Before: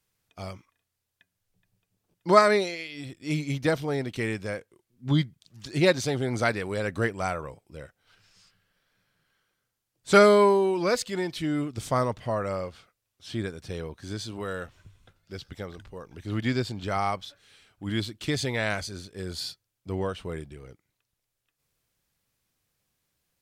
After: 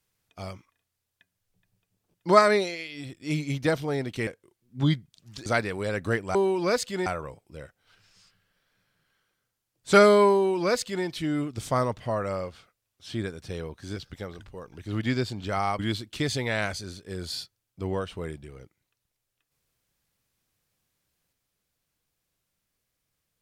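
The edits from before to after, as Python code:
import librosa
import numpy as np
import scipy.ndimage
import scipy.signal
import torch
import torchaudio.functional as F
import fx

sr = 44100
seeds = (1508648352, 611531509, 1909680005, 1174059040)

y = fx.edit(x, sr, fx.cut(start_s=4.27, length_s=0.28),
    fx.cut(start_s=5.74, length_s=0.63),
    fx.duplicate(start_s=10.54, length_s=0.71, to_s=7.26),
    fx.cut(start_s=14.16, length_s=1.19),
    fx.cut(start_s=17.18, length_s=0.69), tone=tone)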